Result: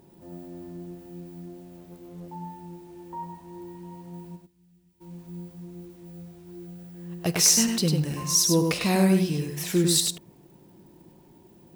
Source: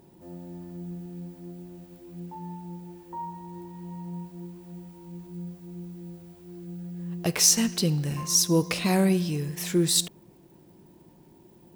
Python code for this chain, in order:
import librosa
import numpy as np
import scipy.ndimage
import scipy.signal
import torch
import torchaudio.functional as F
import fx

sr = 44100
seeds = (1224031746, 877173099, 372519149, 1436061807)

p1 = fx.tone_stack(x, sr, knobs='6-0-2', at=(4.35, 5.0), fade=0.02)
p2 = p1 + fx.echo_single(p1, sr, ms=100, db=-4.5, dry=0)
y = fx.doppler_dist(p2, sr, depth_ms=0.67, at=(1.77, 2.28))